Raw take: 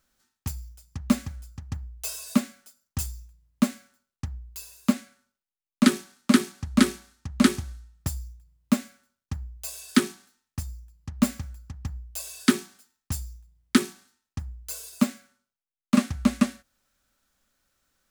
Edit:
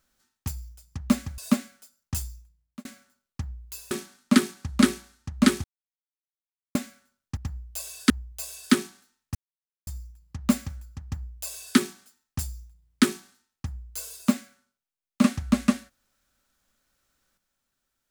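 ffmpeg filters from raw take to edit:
ffmpeg -i in.wav -filter_complex "[0:a]asplit=9[link_01][link_02][link_03][link_04][link_05][link_06][link_07][link_08][link_09];[link_01]atrim=end=1.382[link_10];[link_02]atrim=start=2.218:end=3.69,asetpts=PTS-STARTPTS,afade=type=out:start_time=0.852:duration=0.62[link_11];[link_03]atrim=start=3.69:end=4.752,asetpts=PTS-STARTPTS,afade=type=in:duration=0.004:curve=hsin[link_12];[link_04]atrim=start=5.888:end=7.62,asetpts=PTS-STARTPTS,afade=type=out:start_time=1.728:duration=0.004:curve=hsin[link_13];[link_05]atrim=start=7.62:end=8.73,asetpts=PTS-STARTPTS,volume=0[link_14];[link_06]atrim=start=8.73:end=9.352,asetpts=PTS-STARTPTS,afade=type=in:duration=0.004:curve=hsin[link_15];[link_07]atrim=start=11.768:end=12.502[link_16];[link_08]atrim=start=9.348:end=10.6,asetpts=PTS-STARTPTS,afade=type=out:start_time=1.248:duration=0.004:curve=hsin,apad=pad_dur=0.52[link_17];[link_09]atrim=start=10.6,asetpts=PTS-STARTPTS,afade=type=in:duration=0.004:curve=hsin[link_18];[link_11][link_12]concat=n=2:v=0:a=1[link_19];[link_10][link_19]acrossfade=duration=0.004:curve1=hsin:curve2=hsin[link_20];[link_13][link_14][link_15]concat=n=3:v=0:a=1[link_21];[link_20][link_21]acrossfade=duration=0.004:curve1=hsin:curve2=hsin[link_22];[link_22][link_16]acrossfade=duration=0.004:curve1=hsin:curve2=hsin[link_23];[link_17][link_18]concat=n=2:v=0:a=1[link_24];[link_23][link_24]acrossfade=duration=0.004:curve1=hsin:curve2=hsin" out.wav

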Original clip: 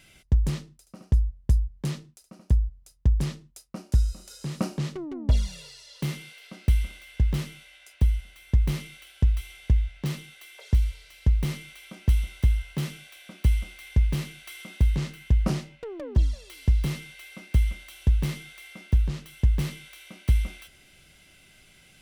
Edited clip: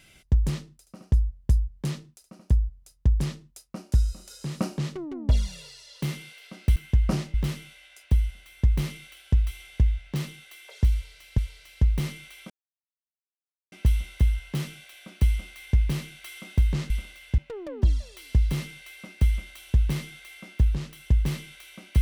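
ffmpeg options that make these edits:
ffmpeg -i in.wav -filter_complex "[0:a]asplit=7[link_01][link_02][link_03][link_04][link_05][link_06][link_07];[link_01]atrim=end=6.762[link_08];[link_02]atrim=start=15.128:end=15.712[link_09];[link_03]atrim=start=7.238:end=11.282[link_10];[link_04]atrim=start=10.828:end=11.95,asetpts=PTS-STARTPTS,afade=type=out:start_time=1.118:duration=0.004:curve=hsin,apad=pad_dur=1.22[link_11];[link_05]atrim=start=11.95:end=15.132,asetpts=PTS-STARTPTS,afade=type=in:duration=0.004:curve=hsin[link_12];[link_06]atrim=start=6.758:end=7.242[link_13];[link_07]atrim=start=15.708[link_14];[link_08][link_09]acrossfade=duration=0.004:curve1=hsin:curve2=hsin[link_15];[link_15][link_10]acrossfade=duration=0.004:curve1=hsin:curve2=hsin[link_16];[link_11][link_12]concat=n=2:v=0:a=1[link_17];[link_16][link_17]acrossfade=duration=0.004:curve1=hsin:curve2=hsin[link_18];[link_18][link_13]acrossfade=duration=0.004:curve1=hsin:curve2=hsin[link_19];[link_19][link_14]acrossfade=duration=0.004:curve1=hsin:curve2=hsin" out.wav

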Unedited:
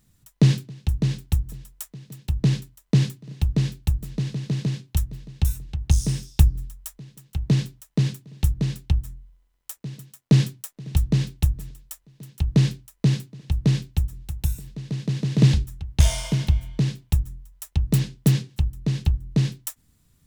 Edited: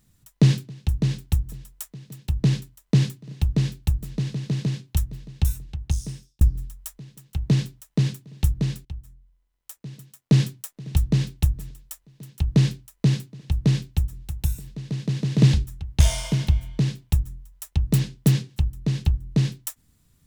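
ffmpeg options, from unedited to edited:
ffmpeg -i in.wav -filter_complex "[0:a]asplit=3[link_01][link_02][link_03];[link_01]atrim=end=6.41,asetpts=PTS-STARTPTS,afade=type=out:start_time=5.48:duration=0.93[link_04];[link_02]atrim=start=6.41:end=8.85,asetpts=PTS-STARTPTS,afade=type=in:duration=0.004:curve=hsin,afade=type=out:start_time=2.436:duration=0.004:curve=hsin:silence=0.158489[link_05];[link_03]atrim=start=8.85,asetpts=PTS-STARTPTS,afade=type=in:duration=1.69:silence=0.158489[link_06];[link_04][link_05][link_06]concat=n=3:v=0:a=1" out.wav

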